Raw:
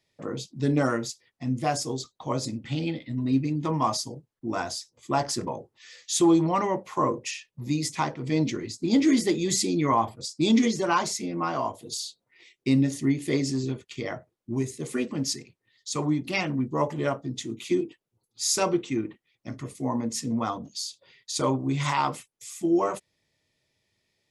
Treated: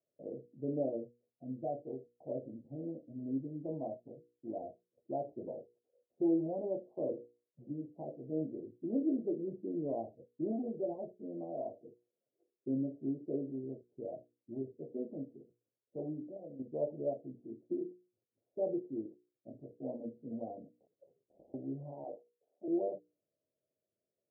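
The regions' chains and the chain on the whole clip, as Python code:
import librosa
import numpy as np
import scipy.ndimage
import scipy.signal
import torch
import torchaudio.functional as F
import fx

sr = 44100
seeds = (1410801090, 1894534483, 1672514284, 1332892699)

y = fx.chain(x, sr, fx.lowpass_res(hz=6400.0, q=3.2),
    fx.clip_hard(threshold_db=-20.5), at=(10.51, 10.99))
y = fx.chain(y, sr, fx.sample_sort(block=16),
    fx.peak_eq(hz=500.0, db=11.0, octaves=0.28),
    fx.level_steps(step_db=12), at=(16.23, 16.71))
y = fx.chain(y, sr, fx.overflow_wrap(gain_db=26.0),
    fx.over_compress(threshold_db=-38.0, ratio=-0.5), at=(20.8, 21.54))
y = fx.chain(y, sr, fx.law_mismatch(coded='A'),
    fx.highpass(hz=480.0, slope=12),
    fx.env_flatten(amount_pct=50), at=(22.04, 22.68))
y = scipy.signal.sosfilt(scipy.signal.butter(12, 660.0, 'lowpass', fs=sr, output='sos'), y)
y = np.diff(y, prepend=0.0)
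y = fx.hum_notches(y, sr, base_hz=60, count=8)
y = y * librosa.db_to_amplitude(16.0)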